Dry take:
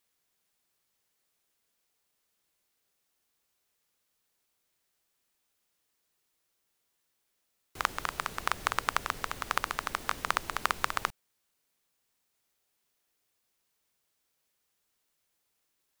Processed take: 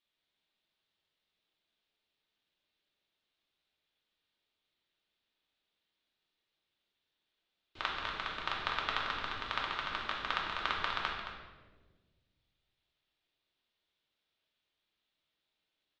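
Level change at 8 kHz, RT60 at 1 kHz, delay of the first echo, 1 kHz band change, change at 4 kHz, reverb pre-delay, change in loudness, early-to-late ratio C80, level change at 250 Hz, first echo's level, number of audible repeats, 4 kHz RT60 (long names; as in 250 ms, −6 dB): −19.0 dB, 1.1 s, 220 ms, −4.5 dB, +1.0 dB, 3 ms, −3.5 dB, 3.5 dB, −3.0 dB, −9.0 dB, 1, 0.95 s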